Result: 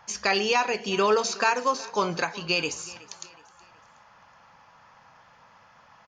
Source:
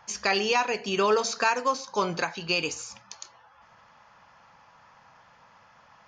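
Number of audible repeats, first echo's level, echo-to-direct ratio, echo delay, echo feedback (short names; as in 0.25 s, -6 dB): 2, -20.5 dB, -19.5 dB, 0.37 s, 42%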